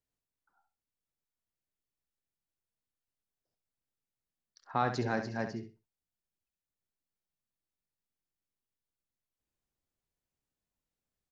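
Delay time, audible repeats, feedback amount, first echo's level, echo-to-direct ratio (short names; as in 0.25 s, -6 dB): 67 ms, 2, 18%, -9.0 dB, -9.0 dB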